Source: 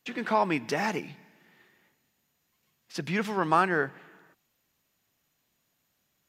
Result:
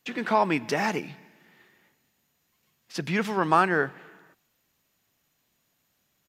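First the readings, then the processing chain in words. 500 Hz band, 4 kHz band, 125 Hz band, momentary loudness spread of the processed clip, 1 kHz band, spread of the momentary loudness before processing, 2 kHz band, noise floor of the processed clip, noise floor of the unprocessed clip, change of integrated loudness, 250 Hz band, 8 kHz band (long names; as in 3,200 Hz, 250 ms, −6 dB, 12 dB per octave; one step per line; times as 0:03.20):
+2.5 dB, +2.5 dB, +2.5 dB, 14 LU, +2.5 dB, 14 LU, +2.5 dB, −73 dBFS, −76 dBFS, +2.5 dB, +2.5 dB, +2.5 dB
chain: far-end echo of a speakerphone 280 ms, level −30 dB
level +2.5 dB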